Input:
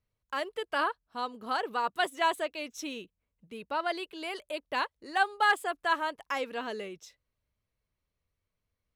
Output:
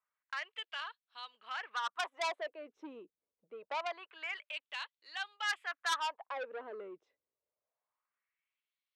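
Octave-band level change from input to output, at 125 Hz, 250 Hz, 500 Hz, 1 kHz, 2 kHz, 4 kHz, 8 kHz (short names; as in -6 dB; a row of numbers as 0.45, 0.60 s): n/a, -15.0 dB, -9.5 dB, -10.0 dB, -7.0 dB, -3.5 dB, -3.0 dB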